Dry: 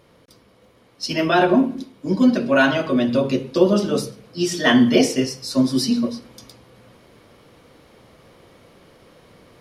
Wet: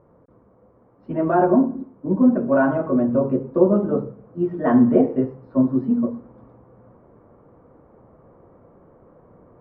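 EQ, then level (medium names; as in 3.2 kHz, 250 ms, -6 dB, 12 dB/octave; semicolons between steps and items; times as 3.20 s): low-pass 1.2 kHz 24 dB/octave; distance through air 100 m; 0.0 dB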